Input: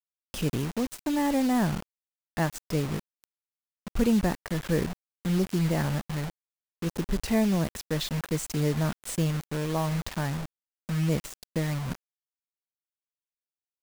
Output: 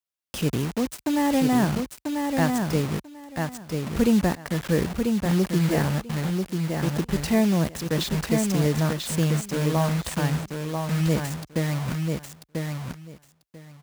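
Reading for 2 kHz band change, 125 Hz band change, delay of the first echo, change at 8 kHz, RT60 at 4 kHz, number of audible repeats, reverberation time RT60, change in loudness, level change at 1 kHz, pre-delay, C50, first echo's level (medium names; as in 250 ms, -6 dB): +5.0 dB, +4.5 dB, 991 ms, +5.0 dB, no reverb, 2, no reverb, +4.0 dB, +5.0 dB, no reverb, no reverb, -4.5 dB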